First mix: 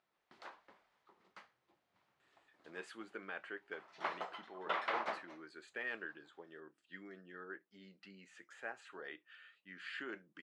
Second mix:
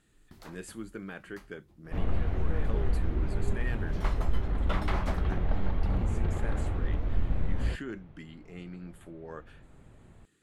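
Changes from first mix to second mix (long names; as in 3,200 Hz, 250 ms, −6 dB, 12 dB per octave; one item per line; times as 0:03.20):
speech: entry −2.20 s
second sound: unmuted
master: remove band-pass filter 550–3,600 Hz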